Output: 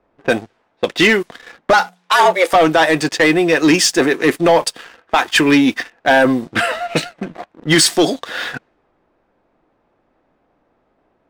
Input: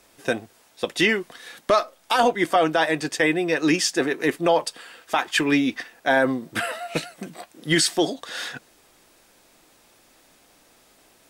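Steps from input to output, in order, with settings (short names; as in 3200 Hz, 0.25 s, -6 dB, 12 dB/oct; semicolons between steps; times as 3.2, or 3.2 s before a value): low-pass opened by the level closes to 1100 Hz, open at -19.5 dBFS; sample leveller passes 2; 1.73–2.53 frequency shift +180 Hz; gain +2.5 dB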